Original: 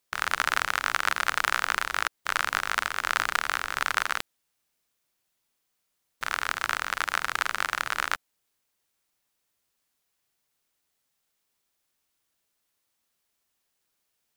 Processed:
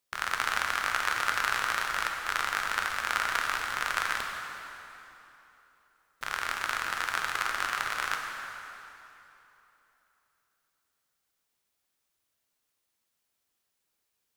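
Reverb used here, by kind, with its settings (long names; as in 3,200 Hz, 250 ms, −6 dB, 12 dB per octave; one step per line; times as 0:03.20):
dense smooth reverb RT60 3.2 s, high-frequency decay 0.8×, DRR 1.5 dB
level −4.5 dB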